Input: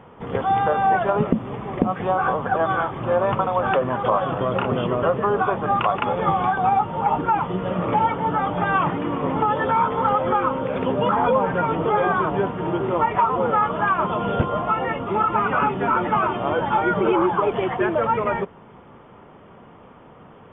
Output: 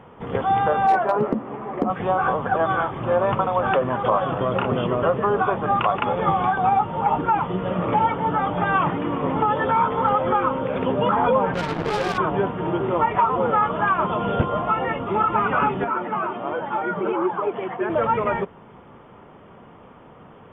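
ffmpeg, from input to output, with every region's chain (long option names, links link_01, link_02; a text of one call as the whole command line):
ffmpeg -i in.wav -filter_complex "[0:a]asettb=1/sr,asplit=3[link_01][link_02][link_03];[link_01]atrim=end=0.874[link_04];[link_02]atrim=start=0.87:end=1.9,asetpts=PTS-STARTPTS,afade=type=in:duration=0.004:curve=qsin,afade=type=out:start_time=1.026:duration=0.004:curve=qsin,acrossover=split=210 2100:gain=0.2 1 0.178[link_05][link_06][link_07];[link_05][link_06][link_07]amix=inputs=3:normalize=0,asplit=2[link_08][link_09];[link_09]adelay=14,volume=-6dB[link_10];[link_08][link_10]amix=inputs=2:normalize=0,atrim=end_sample=45423,asoftclip=type=hard:threshold=-11.5dB[link_11];[link_03]atrim=start=1.896[link_12];[link_04][link_11]acrossfade=duration=0.004:curve1=hsin:curve2=qsin[link_13];[link_13][link_12]acrossfade=duration=0.004:curve1=qsin:curve2=hsin,asettb=1/sr,asplit=3[link_14][link_15][link_16];[link_14]atrim=end=11.544[link_17];[link_15]atrim=start=11.54:end=12.18,asetpts=PTS-STARTPTS,afade=type=in:duration=0.004:curve=qsin,afade=type=out:start_time=0.636:duration=0.004:curve=qsin,equalizer=frequency=1500:width=0.34:gain=-7,acrusher=bits=3:mix=0:aa=0.5[link_18];[link_16]atrim=start=12.176[link_19];[link_17][link_18]acrossfade=duration=0.004:curve1=hsin:curve2=qsin[link_20];[link_20][link_19]acrossfade=duration=0.004:curve1=qsin:curve2=hsin,asettb=1/sr,asplit=3[link_21][link_22][link_23];[link_21]atrim=end=15.844[link_24];[link_22]atrim=start=15.84:end=17.9,asetpts=PTS-STARTPTS,afade=type=in:duration=0.004:curve=qsin,afade=type=out:start_time=2.056:duration=0.004:curve=qsin,highpass=170,lowpass=2700,flanger=delay=1.2:depth=4.9:regen=68:speed=1.3:shape=triangular[link_25];[link_23]atrim=start=17.896[link_26];[link_24][link_25]acrossfade=duration=0.004:curve1=hsin:curve2=qsin[link_27];[link_27][link_26]acrossfade=duration=0.004:curve1=qsin:curve2=hsin" out.wav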